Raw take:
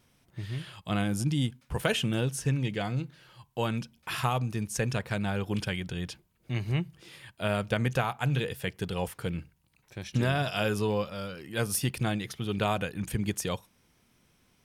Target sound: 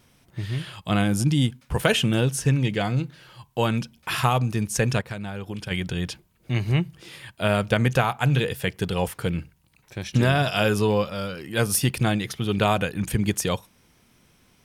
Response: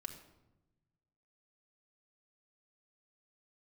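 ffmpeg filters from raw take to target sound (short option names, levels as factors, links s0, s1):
-filter_complex "[0:a]asplit=3[s0][s1][s2];[s0]afade=t=out:st=5:d=0.02[s3];[s1]acompressor=threshold=0.0141:ratio=6,afade=t=in:st=5:d=0.02,afade=t=out:st=5.7:d=0.02[s4];[s2]afade=t=in:st=5.7:d=0.02[s5];[s3][s4][s5]amix=inputs=3:normalize=0,volume=2.24"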